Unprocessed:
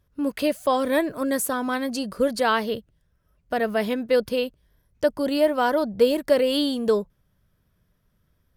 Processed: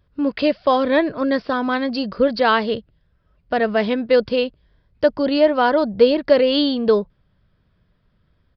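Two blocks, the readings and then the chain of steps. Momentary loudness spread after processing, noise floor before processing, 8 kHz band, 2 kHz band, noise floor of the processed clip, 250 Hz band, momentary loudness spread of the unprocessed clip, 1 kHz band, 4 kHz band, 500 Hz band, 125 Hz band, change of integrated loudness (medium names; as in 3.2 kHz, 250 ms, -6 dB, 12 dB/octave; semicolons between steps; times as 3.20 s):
8 LU, -69 dBFS, under -25 dB, +5.0 dB, -64 dBFS, +5.0 dB, 8 LU, +5.0 dB, +5.0 dB, +5.0 dB, no reading, +5.0 dB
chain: resampled via 11.025 kHz; trim +5 dB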